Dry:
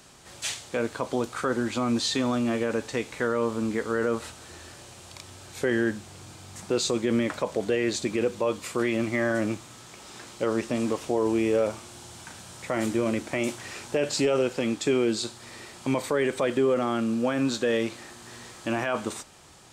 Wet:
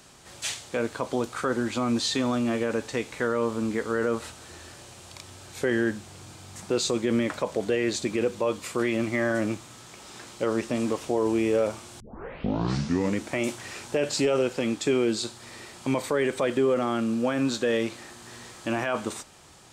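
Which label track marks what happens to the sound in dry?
12.000000	12.000000	tape start 1.24 s

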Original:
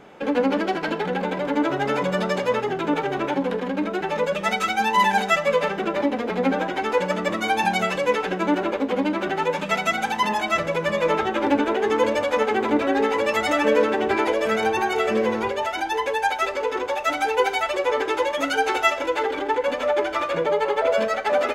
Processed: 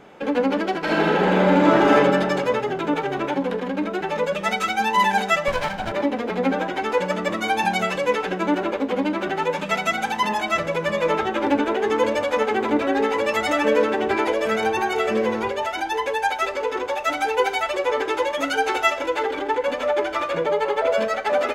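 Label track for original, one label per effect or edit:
0.800000	1.930000	reverb throw, RT60 1.9 s, DRR -6.5 dB
5.480000	5.920000	comb filter that takes the minimum delay 1.3 ms

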